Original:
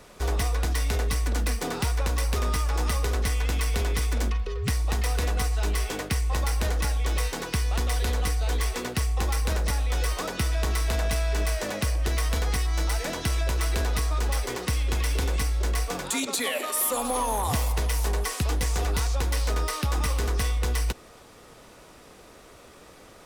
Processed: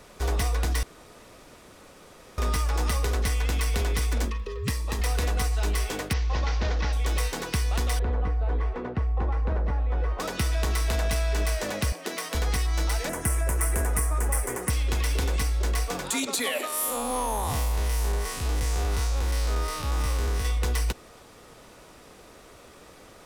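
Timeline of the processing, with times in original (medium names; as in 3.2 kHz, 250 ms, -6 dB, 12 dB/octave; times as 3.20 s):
0.83–2.38 s: room tone
4.25–5.00 s: comb of notches 740 Hz
6.13–6.93 s: CVSD coder 32 kbps
7.99–10.20 s: low-pass 1.2 kHz
11.92–12.35 s: elliptic high-pass 180 Hz
13.09–14.70 s: FFT filter 2 kHz 0 dB, 4 kHz -19 dB, 9.4 kHz +11 dB, 14 kHz +5 dB
16.67–20.45 s: spectral blur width 103 ms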